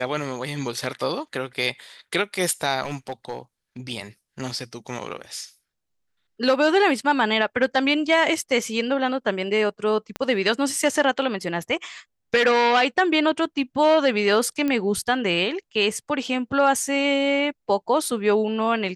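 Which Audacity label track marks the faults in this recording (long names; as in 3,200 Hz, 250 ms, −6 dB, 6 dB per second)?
2.820000	3.380000	clipping −23.5 dBFS
10.160000	10.160000	click −15 dBFS
14.680000	14.680000	click −13 dBFS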